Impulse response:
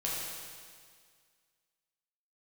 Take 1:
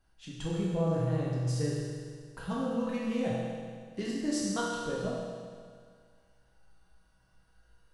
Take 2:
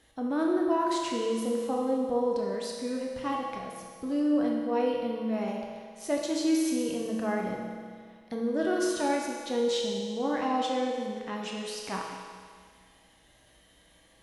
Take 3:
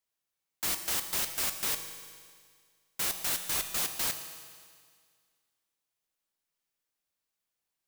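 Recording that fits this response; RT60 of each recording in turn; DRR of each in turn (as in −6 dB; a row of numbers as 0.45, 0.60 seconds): 1; 1.9, 1.9, 1.9 seconds; −6.0, −1.5, 6.5 decibels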